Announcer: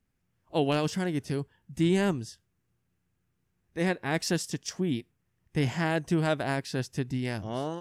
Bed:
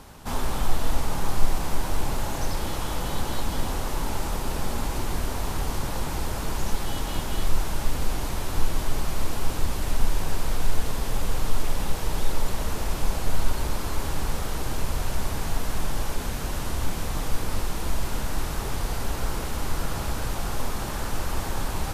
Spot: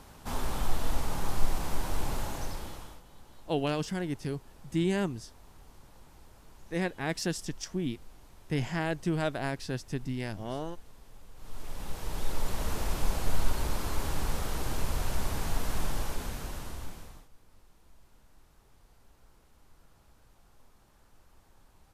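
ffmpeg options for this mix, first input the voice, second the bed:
-filter_complex "[0:a]adelay=2950,volume=0.668[s0];[1:a]volume=7.08,afade=t=out:st=2.17:d=0.85:silence=0.0891251,afade=t=in:st=11.35:d=1.37:silence=0.0749894,afade=t=out:st=15.84:d=1.44:silence=0.0354813[s1];[s0][s1]amix=inputs=2:normalize=0"

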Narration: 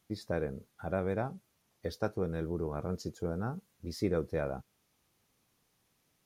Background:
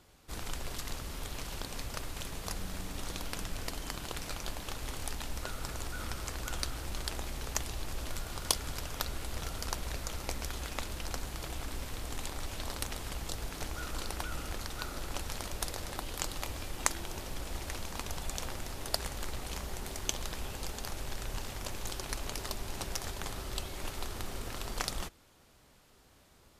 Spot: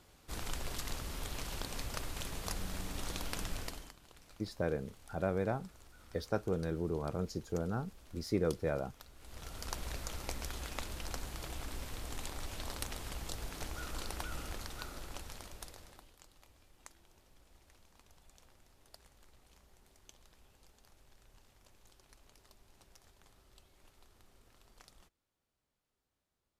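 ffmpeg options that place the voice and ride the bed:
-filter_complex "[0:a]adelay=4300,volume=0.891[s0];[1:a]volume=5.96,afade=t=out:st=3.53:d=0.41:silence=0.112202,afade=t=in:st=9.16:d=0.65:silence=0.149624,afade=t=out:st=14.4:d=1.76:silence=0.0841395[s1];[s0][s1]amix=inputs=2:normalize=0"

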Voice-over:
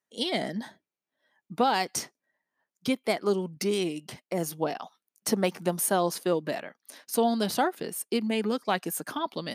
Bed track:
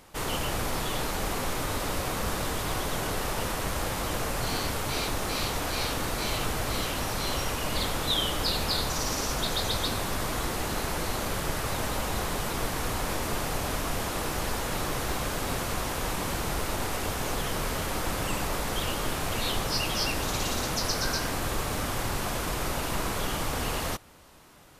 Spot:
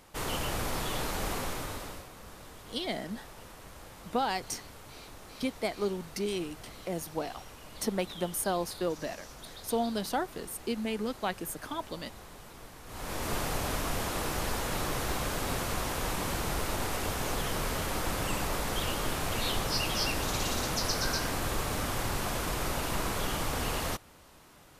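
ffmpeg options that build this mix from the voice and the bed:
-filter_complex "[0:a]adelay=2550,volume=0.531[s0];[1:a]volume=4.73,afade=t=out:st=1.32:d=0.76:silence=0.16788,afade=t=in:st=12.86:d=0.47:silence=0.149624[s1];[s0][s1]amix=inputs=2:normalize=0"

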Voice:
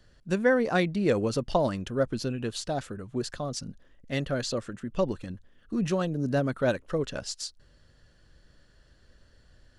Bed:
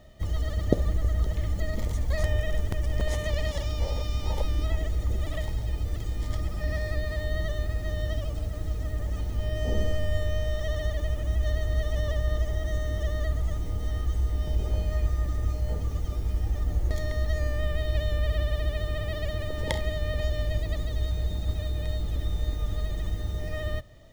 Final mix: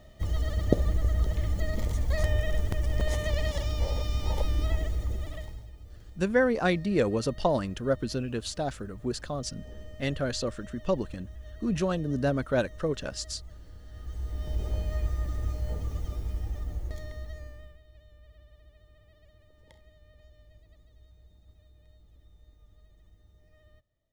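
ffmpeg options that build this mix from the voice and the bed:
-filter_complex "[0:a]adelay=5900,volume=0.944[s0];[1:a]volume=5.01,afade=t=out:st=4.73:d=0.98:silence=0.133352,afade=t=in:st=13.89:d=0.73:silence=0.188365,afade=t=out:st=16.03:d=1.77:silence=0.0562341[s1];[s0][s1]amix=inputs=2:normalize=0"

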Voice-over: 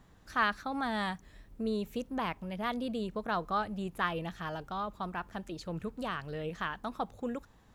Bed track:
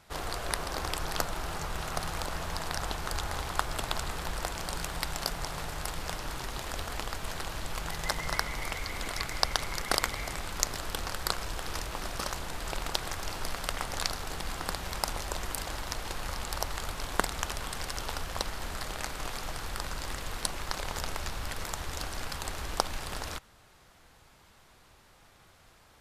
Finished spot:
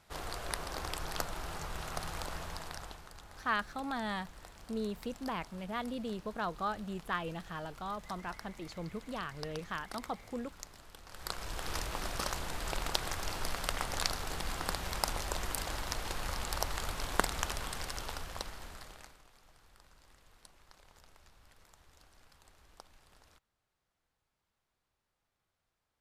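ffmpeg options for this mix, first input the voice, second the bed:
-filter_complex "[0:a]adelay=3100,volume=0.668[s0];[1:a]volume=3.98,afade=t=out:st=2.33:d=0.77:silence=0.211349,afade=t=in:st=11.06:d=0.67:silence=0.133352,afade=t=out:st=17.41:d=1.82:silence=0.0595662[s1];[s0][s1]amix=inputs=2:normalize=0"

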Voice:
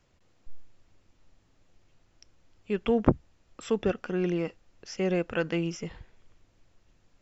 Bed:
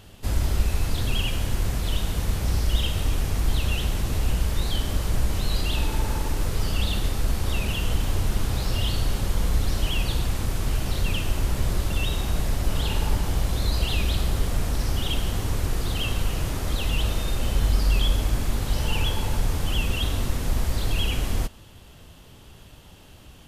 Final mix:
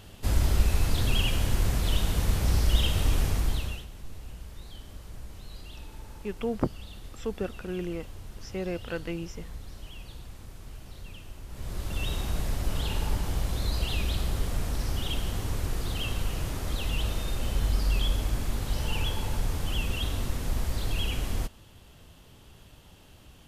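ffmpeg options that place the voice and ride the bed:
-filter_complex "[0:a]adelay=3550,volume=0.531[s0];[1:a]volume=4.73,afade=t=out:st=3.24:d=0.62:silence=0.11885,afade=t=in:st=11.48:d=0.62:silence=0.199526[s1];[s0][s1]amix=inputs=2:normalize=0"

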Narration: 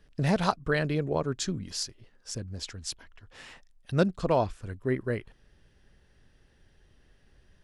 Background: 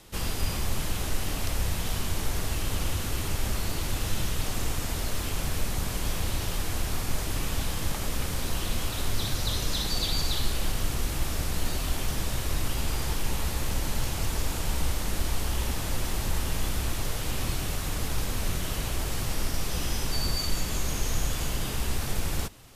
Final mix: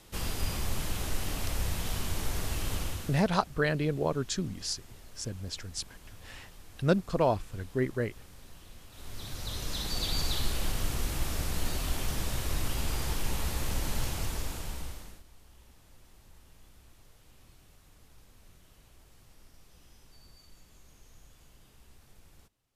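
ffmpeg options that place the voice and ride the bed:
-filter_complex "[0:a]adelay=2900,volume=0.891[s0];[1:a]volume=5.96,afade=t=out:st=2.73:d=0.56:silence=0.11885,afade=t=in:st=8.89:d=1.31:silence=0.112202,afade=t=out:st=14.04:d=1.19:silence=0.0530884[s1];[s0][s1]amix=inputs=2:normalize=0"

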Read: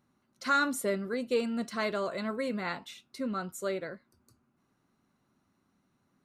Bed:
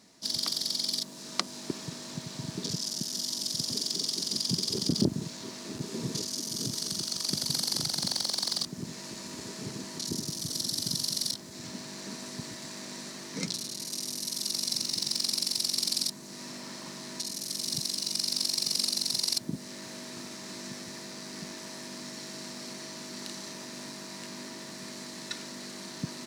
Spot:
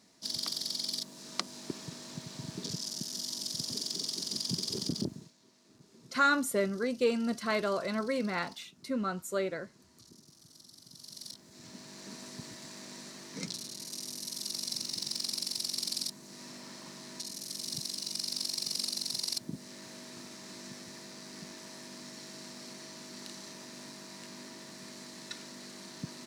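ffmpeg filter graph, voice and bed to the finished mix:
-filter_complex "[0:a]adelay=5700,volume=1.12[s0];[1:a]volume=4.73,afade=t=out:st=4.8:d=0.53:silence=0.112202,afade=t=in:st=10.9:d=1.29:silence=0.125893[s1];[s0][s1]amix=inputs=2:normalize=0"

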